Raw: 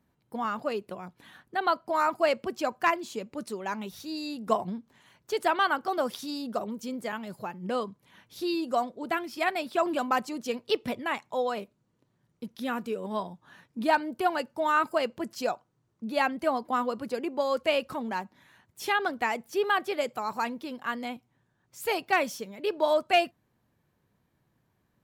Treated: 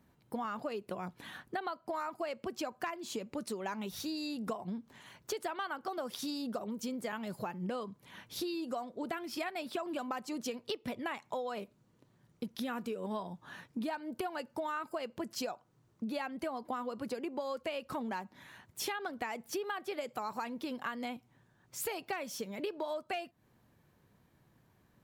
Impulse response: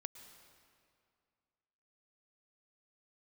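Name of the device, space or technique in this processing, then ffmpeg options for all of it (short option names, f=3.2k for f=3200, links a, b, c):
serial compression, leveller first: -af "acompressor=threshold=-30dB:ratio=2,acompressor=threshold=-40dB:ratio=6,volume=4.5dB"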